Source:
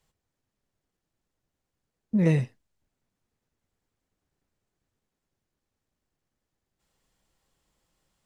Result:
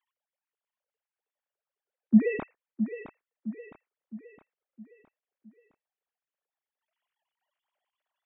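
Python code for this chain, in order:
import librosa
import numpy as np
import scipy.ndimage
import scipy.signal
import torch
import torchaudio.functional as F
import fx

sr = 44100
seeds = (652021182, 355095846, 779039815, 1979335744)

p1 = fx.sine_speech(x, sr)
y = p1 + fx.echo_feedback(p1, sr, ms=663, feedback_pct=48, wet_db=-10.5, dry=0)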